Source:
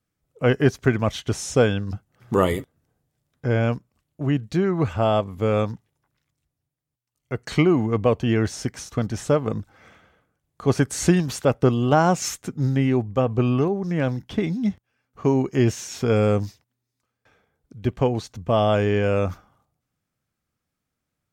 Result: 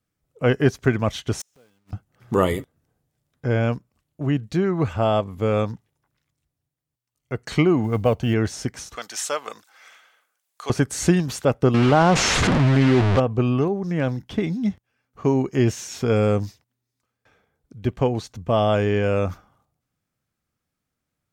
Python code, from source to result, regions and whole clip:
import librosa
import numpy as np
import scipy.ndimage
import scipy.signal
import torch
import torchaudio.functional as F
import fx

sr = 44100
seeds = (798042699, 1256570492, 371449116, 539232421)

y = fx.chain(x, sr, fx.block_float(bits=3),
    fx.highpass(hz=140.0, slope=12),
    fx.gate_flip(shuts_db=-21.0, range_db=-39), at=(1.4, 1.93))
y = fx.chain(y, sr, fx.quant_companded(bits=8),
    fx.comb(ms=1.4, depth=0.31), at=(7.84, 8.34))
y = fx.chain(y, sr, fx.highpass(hz=830.0, slope=12),
    fx.high_shelf(hz=2500.0, db=11.0), at=(8.96, 10.7))
y = fx.chain(y, sr, fx.delta_mod(bps=64000, step_db=-20.5),
    fx.lowpass(hz=3300.0, slope=12),
    fx.env_flatten(amount_pct=70), at=(11.74, 13.2))